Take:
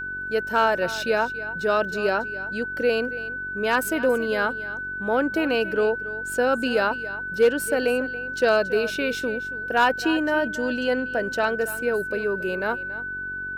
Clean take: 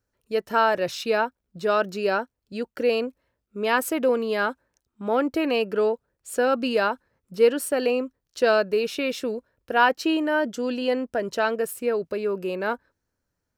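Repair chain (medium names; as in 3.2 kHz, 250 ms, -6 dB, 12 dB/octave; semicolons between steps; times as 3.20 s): clip repair -11 dBFS; de-hum 47 Hz, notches 9; band-stop 1.5 kHz, Q 30; inverse comb 279 ms -15.5 dB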